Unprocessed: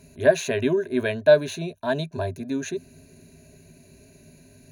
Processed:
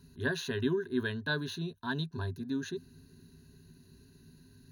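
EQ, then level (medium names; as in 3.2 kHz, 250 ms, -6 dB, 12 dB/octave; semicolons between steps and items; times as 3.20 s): static phaser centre 2.3 kHz, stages 6; -4.0 dB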